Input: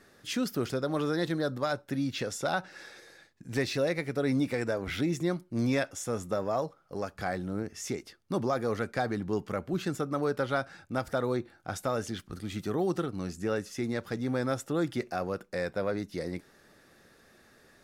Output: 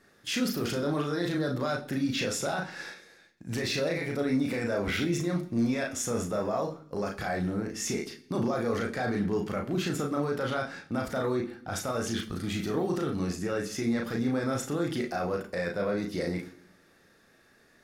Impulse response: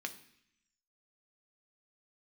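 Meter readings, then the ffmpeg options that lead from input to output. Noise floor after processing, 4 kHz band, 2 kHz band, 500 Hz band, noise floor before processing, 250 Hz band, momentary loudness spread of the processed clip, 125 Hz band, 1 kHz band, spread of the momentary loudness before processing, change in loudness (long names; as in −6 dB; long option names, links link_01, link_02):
−62 dBFS, +4.0 dB, +2.0 dB, +0.5 dB, −62 dBFS, +2.5 dB, 5 LU, +1.5 dB, 0.0 dB, 8 LU, +1.5 dB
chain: -filter_complex "[0:a]agate=range=-9dB:threshold=-48dB:ratio=16:detection=peak,alimiter=level_in=4dB:limit=-24dB:level=0:latency=1:release=12,volume=-4dB,asplit=2[link_01][link_02];[1:a]atrim=start_sample=2205,adelay=35[link_03];[link_02][link_03]afir=irnorm=-1:irlink=0,volume=-0.5dB[link_04];[link_01][link_04]amix=inputs=2:normalize=0,volume=4.5dB"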